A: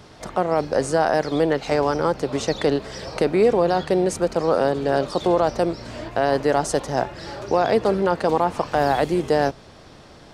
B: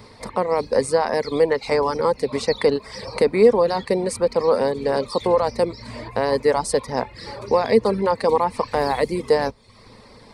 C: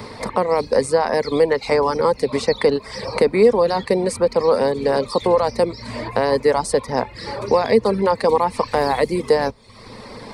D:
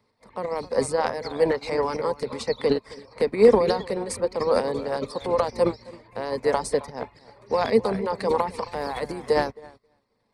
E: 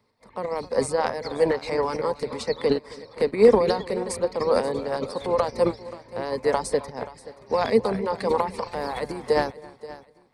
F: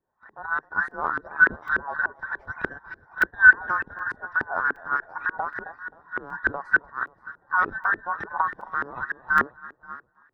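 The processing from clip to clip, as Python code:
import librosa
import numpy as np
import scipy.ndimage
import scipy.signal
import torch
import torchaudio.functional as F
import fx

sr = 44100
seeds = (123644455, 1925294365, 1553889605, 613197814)

y1 = fx.dereverb_blind(x, sr, rt60_s=0.6)
y1 = fx.ripple_eq(y1, sr, per_octave=0.93, db=10)
y2 = fx.band_squash(y1, sr, depth_pct=40)
y2 = y2 * 10.0 ** (2.0 / 20.0)
y3 = fx.transient(y2, sr, attack_db=-2, sustain_db=10)
y3 = fx.echo_bbd(y3, sr, ms=267, stages=4096, feedback_pct=34, wet_db=-9.0)
y3 = fx.upward_expand(y3, sr, threshold_db=-36.0, expansion=2.5)
y4 = fx.echo_feedback(y3, sr, ms=529, feedback_pct=31, wet_db=-17.5)
y5 = fx.band_invert(y4, sr, width_hz=2000)
y5 = fx.filter_lfo_lowpass(y5, sr, shape='saw_up', hz=3.4, low_hz=360.0, high_hz=1900.0, q=2.5)
y5 = fx.buffer_crackle(y5, sr, first_s=0.91, period_s=0.77, block=128, kind='zero')
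y5 = y5 * 10.0 ** (-3.5 / 20.0)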